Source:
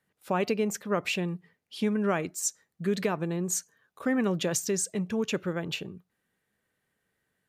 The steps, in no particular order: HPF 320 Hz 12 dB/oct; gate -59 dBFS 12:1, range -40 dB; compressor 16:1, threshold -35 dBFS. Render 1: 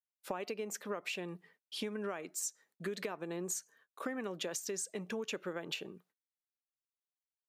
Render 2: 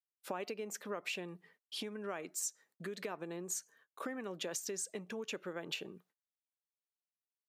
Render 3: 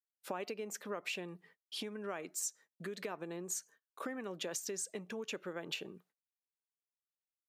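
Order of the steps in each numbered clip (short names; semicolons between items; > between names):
gate > HPF > compressor; gate > compressor > HPF; compressor > gate > HPF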